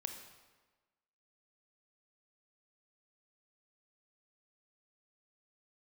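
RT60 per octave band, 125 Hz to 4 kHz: 1.2, 1.3, 1.3, 1.3, 1.2, 1.0 s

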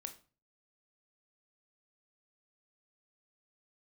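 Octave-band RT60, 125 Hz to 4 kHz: 0.55, 0.45, 0.35, 0.35, 0.30, 0.30 s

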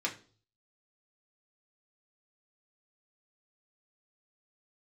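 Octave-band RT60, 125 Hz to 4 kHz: 0.80, 0.50, 0.45, 0.35, 0.35, 0.40 s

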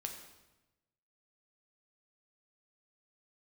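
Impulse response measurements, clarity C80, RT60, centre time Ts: 8.5 dB, 1.0 s, 27 ms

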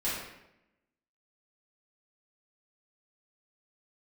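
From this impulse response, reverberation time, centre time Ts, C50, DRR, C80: 0.85 s, 67 ms, 0.5 dB, -10.5 dB, 3.5 dB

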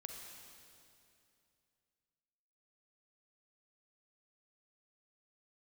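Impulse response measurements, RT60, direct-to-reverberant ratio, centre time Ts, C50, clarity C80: 2.6 s, 1.5 dB, 89 ms, 2.0 dB, 3.5 dB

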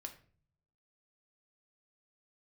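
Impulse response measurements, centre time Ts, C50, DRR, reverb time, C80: 10 ms, 12.0 dB, 3.0 dB, 0.45 s, 16.5 dB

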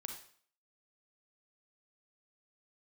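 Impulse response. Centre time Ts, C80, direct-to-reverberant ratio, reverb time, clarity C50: 24 ms, 10.0 dB, 3.0 dB, 0.50 s, 5.0 dB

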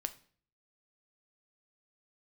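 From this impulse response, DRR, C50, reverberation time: 9.0 dB, 16.5 dB, 0.50 s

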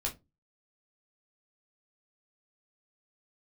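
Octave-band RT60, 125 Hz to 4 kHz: 0.40, 0.35, 0.25, 0.20, 0.15, 0.15 s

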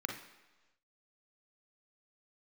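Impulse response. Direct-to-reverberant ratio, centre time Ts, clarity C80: 2.5 dB, 27 ms, 10.0 dB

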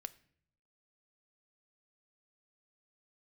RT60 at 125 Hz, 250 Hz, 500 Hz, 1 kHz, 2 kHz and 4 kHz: 1.0, 0.85, 0.70, 0.55, 0.60, 0.50 s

